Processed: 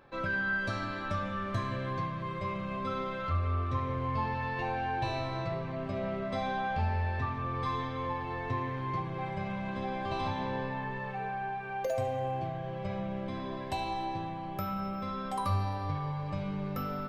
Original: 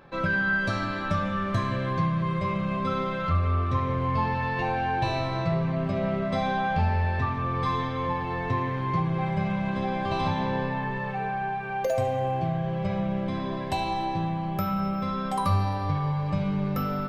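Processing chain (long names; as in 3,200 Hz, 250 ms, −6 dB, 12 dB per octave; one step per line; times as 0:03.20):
parametric band 170 Hz −11 dB 0.22 octaves
level −6 dB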